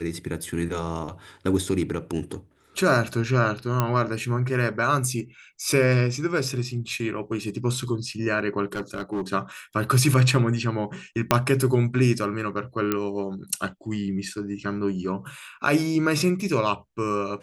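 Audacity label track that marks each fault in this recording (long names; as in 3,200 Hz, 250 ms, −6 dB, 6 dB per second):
3.800000	3.800000	click −8 dBFS
8.750000	9.220000	clipping −24 dBFS
11.310000	11.310000	click −2 dBFS
12.920000	12.920000	click −9 dBFS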